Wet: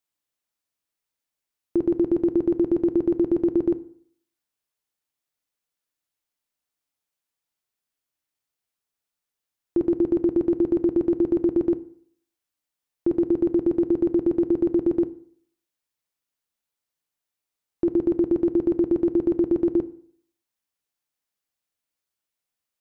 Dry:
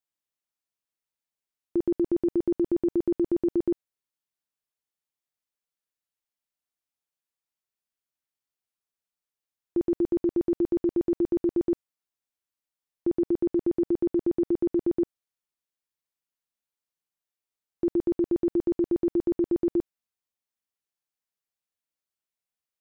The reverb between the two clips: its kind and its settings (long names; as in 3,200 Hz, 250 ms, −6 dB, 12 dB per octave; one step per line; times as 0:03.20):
feedback delay network reverb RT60 0.58 s, low-frequency decay 1×, high-frequency decay 0.75×, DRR 12 dB
level +4.5 dB